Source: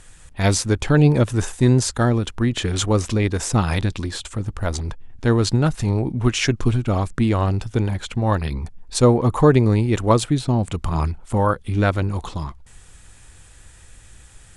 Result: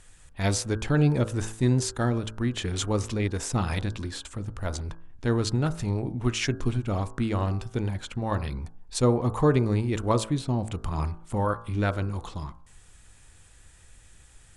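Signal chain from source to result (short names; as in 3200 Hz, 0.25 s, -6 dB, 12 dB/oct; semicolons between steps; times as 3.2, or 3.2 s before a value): de-hum 54.94 Hz, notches 30; gain -7 dB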